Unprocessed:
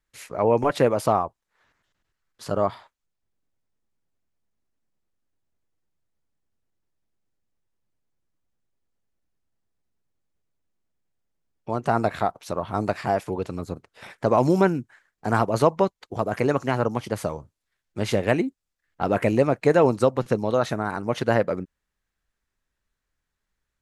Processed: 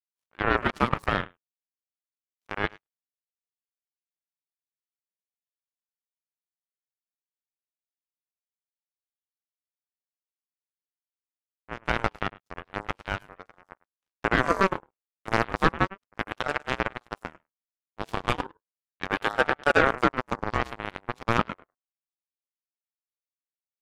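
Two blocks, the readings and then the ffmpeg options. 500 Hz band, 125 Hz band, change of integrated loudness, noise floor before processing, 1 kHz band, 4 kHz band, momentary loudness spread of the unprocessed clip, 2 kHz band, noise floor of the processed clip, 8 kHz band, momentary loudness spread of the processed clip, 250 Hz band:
-9.0 dB, -7.5 dB, -4.0 dB, -82 dBFS, -2.5 dB, +2.5 dB, 13 LU, +5.5 dB, under -85 dBFS, -7.5 dB, 15 LU, -7.0 dB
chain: -filter_complex "[0:a]bandreject=f=60:t=h:w=6,bandreject=f=120:t=h:w=6,bandreject=f=180:t=h:w=6,bandreject=f=240:t=h:w=6,bandreject=f=300:t=h:w=6,bandreject=f=360:t=h:w=6,bandreject=f=420:t=h:w=6,bandreject=f=480:t=h:w=6,asplit=2[a][b];[b]adelay=104,lowpass=f=1.1k:p=1,volume=-7dB,asplit=2[c][d];[d]adelay=104,lowpass=f=1.1k:p=1,volume=0.16,asplit=2[e][f];[f]adelay=104,lowpass=f=1.1k:p=1,volume=0.16[g];[c][e][g]amix=inputs=3:normalize=0[h];[a][h]amix=inputs=2:normalize=0,aeval=exprs='0.708*(cos(1*acos(clip(val(0)/0.708,-1,1)))-cos(1*PI/2))+0.0794*(cos(5*acos(clip(val(0)/0.708,-1,1)))-cos(5*PI/2))+0.0126*(cos(6*acos(clip(val(0)/0.708,-1,1)))-cos(6*PI/2))+0.158*(cos(7*acos(clip(val(0)/0.708,-1,1)))-cos(7*PI/2))+0.00631*(cos(8*acos(clip(val(0)/0.708,-1,1)))-cos(8*PI/2))':c=same,aeval=exprs='val(0)*sin(2*PI*800*n/s+800*0.3/0.36*sin(2*PI*0.36*n/s))':c=same"

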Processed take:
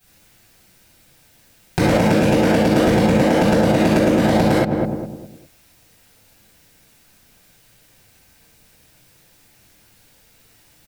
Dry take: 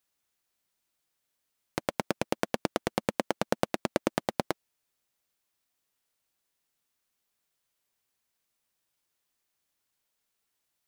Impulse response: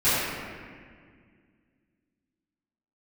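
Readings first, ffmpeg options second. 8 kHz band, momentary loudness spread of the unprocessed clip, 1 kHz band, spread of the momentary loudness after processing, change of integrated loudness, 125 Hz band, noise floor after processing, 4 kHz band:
+10.5 dB, 5 LU, +13.0 dB, 8 LU, +16.5 dB, +22.5 dB, -54 dBFS, +12.0 dB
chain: -filter_complex "[0:a]equalizer=f=1.1k:w=7:g=-9,asplit=2[a][b];[b]adelay=205,lowpass=f=850:p=1,volume=-14dB,asplit=2[c][d];[d]adelay=205,lowpass=f=850:p=1,volume=0.37,asplit=2[e][f];[f]adelay=205,lowpass=f=850:p=1,volume=0.37,asplit=2[g][h];[h]adelay=205,lowpass=f=850:p=1,volume=0.37[i];[a][c][e][g][i]amix=inputs=5:normalize=0[j];[1:a]atrim=start_sample=2205,atrim=end_sample=6174[k];[j][k]afir=irnorm=-1:irlink=0,acompressor=threshold=-26dB:ratio=6,lowshelf=f=250:g=10.5,alimiter=level_in=18.5dB:limit=-1dB:release=50:level=0:latency=1,volume=-5.5dB"

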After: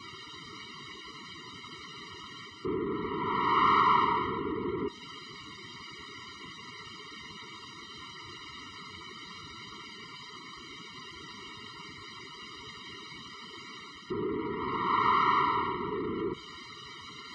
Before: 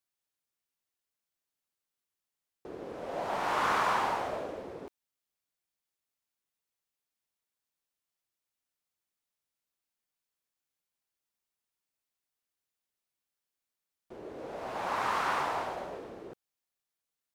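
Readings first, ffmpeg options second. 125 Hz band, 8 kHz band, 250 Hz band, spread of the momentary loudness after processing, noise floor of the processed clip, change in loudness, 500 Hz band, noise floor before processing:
+10.0 dB, -0.5 dB, +10.5 dB, 19 LU, -48 dBFS, +1.0 dB, +3.0 dB, under -85 dBFS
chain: -filter_complex "[0:a]aeval=exprs='val(0)+0.5*0.015*sgn(val(0))':c=same,asplit=2[a][b];[b]acompressor=threshold=-41dB:ratio=6,volume=-2dB[c];[a][c]amix=inputs=2:normalize=0,highpass=58,afftdn=nr=33:nf=-46,lowpass=f=4.2k:w=0.5412,lowpass=f=4.2k:w=1.3066,areverse,acompressor=mode=upward:threshold=-41dB:ratio=2.5,areverse,afftfilt=real='re*eq(mod(floor(b*sr/1024/460),2),0)':imag='im*eq(mod(floor(b*sr/1024/460),2),0)':win_size=1024:overlap=0.75,volume=4.5dB"

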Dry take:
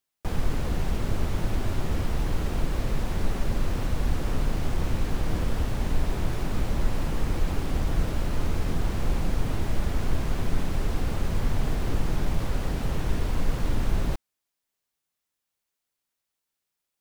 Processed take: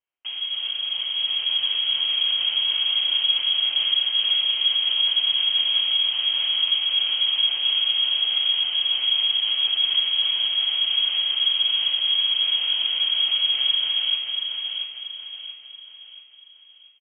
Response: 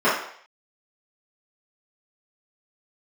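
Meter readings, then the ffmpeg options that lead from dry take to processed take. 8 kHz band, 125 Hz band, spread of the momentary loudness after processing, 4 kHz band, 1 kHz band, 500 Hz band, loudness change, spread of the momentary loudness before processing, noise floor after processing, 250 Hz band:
under -35 dB, under -35 dB, 7 LU, +28.5 dB, -7.5 dB, under -15 dB, +11.0 dB, 1 LU, -49 dBFS, under -25 dB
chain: -filter_complex "[0:a]equalizer=f=1.5k:t=o:w=0.57:g=-6.5,alimiter=limit=-21.5dB:level=0:latency=1:release=83,dynaudnorm=f=210:g=11:m=5.5dB,aecho=1:1:682|1364|2046|2728|3410:0.531|0.228|0.0982|0.0422|0.0181,asplit=2[a][b];[1:a]atrim=start_sample=2205[c];[b][c]afir=irnorm=-1:irlink=0,volume=-23dB[d];[a][d]amix=inputs=2:normalize=0,lowpass=f=2.8k:t=q:w=0.5098,lowpass=f=2.8k:t=q:w=0.6013,lowpass=f=2.8k:t=q:w=0.9,lowpass=f=2.8k:t=q:w=2.563,afreqshift=-3300,volume=-2dB"

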